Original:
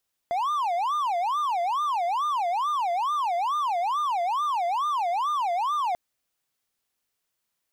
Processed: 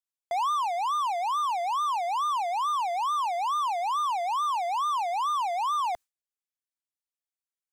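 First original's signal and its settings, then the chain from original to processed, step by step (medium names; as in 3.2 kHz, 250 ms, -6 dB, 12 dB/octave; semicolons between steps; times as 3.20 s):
siren wail 685–1210 Hz 2.3 per s triangle -21 dBFS 5.64 s
gate with hold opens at -23 dBFS; graphic EQ 125/250/500/8000 Hz -12/-5/-5/+5 dB; gain riding within 3 dB 0.5 s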